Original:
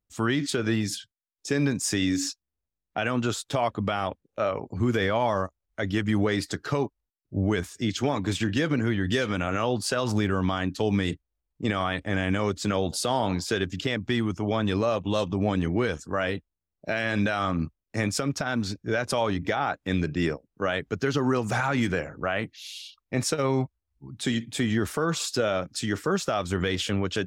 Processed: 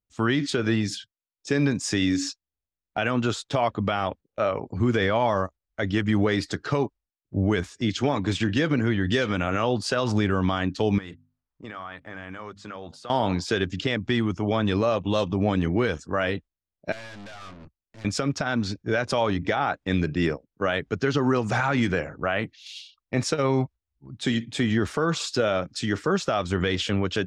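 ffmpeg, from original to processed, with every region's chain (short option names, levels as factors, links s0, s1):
-filter_complex "[0:a]asettb=1/sr,asplit=3[s0][s1][s2];[s0]atrim=end=10.984[s3];[s1]atrim=start=10.98:end=13.1,asetpts=PTS-STARTPTS,afade=t=in:d=0.004:c=qsin,afade=t=out:st=2.116:d=0.004:c=qsin,equalizer=f=1200:t=o:w=1.5:g=9.5,bandreject=f=50:t=h:w=6,bandreject=f=100:t=h:w=6,bandreject=f=150:t=h:w=6,bandreject=f=200:t=h:w=6,bandreject=f=250:t=h:w=6,acompressor=threshold=0.0112:ratio=4:attack=3.2:release=140:knee=1:detection=peak[s4];[s2]atrim=start=13.096[s5];[s3][s4]acrossfade=d=0.004:c1=hsin:c2=qsin[s6];[s6][s5]acrossfade=d=0.004:c1=qsin:c2=hsin,asettb=1/sr,asplit=3[s7][s8][s9];[s7]atrim=end=16.924[s10];[s8]atrim=start=16.92:end=18.05,asetpts=PTS-STARTPTS,afade=t=in:d=0.004:c=qsin,afade=t=out:st=1.126:d=0.004:c=qsin,aeval=exprs='(tanh(112*val(0)+0.6)-tanh(0.6))/112':c=same,highshelf=f=4200:g=3.5[s11];[s9]atrim=start=18.046[s12];[s10][s11]acrossfade=d=0.004:c1=hsin:c2=qsin[s13];[s13][s12]acrossfade=d=0.004:c1=qsin:c2=hsin,lowpass=6100,agate=range=0.447:threshold=0.00891:ratio=16:detection=peak,volume=1.26"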